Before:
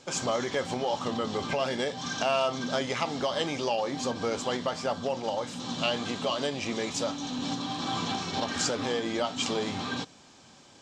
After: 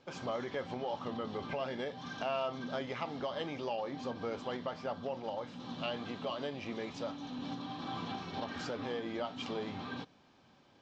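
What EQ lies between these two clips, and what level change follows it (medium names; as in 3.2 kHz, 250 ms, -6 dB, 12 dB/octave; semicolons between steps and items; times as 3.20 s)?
distance through air 220 m; -7.5 dB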